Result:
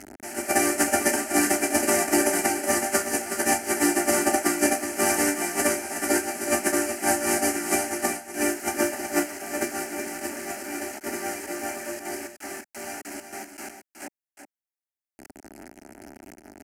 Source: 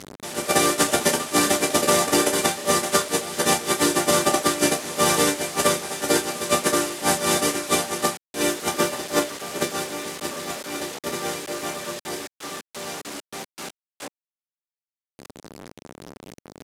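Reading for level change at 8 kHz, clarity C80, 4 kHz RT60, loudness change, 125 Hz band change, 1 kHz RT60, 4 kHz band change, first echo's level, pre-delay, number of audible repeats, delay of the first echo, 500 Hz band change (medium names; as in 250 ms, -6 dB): -1.5 dB, no reverb, no reverb, -2.5 dB, -9.5 dB, no reverb, -9.5 dB, -8.5 dB, no reverb, 1, 370 ms, -3.0 dB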